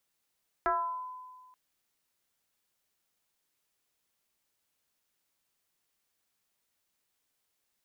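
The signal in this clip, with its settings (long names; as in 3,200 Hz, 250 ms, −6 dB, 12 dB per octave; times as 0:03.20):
two-operator FM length 0.88 s, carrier 1,010 Hz, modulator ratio 0.32, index 1.9, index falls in 0.72 s exponential, decay 1.61 s, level −23.5 dB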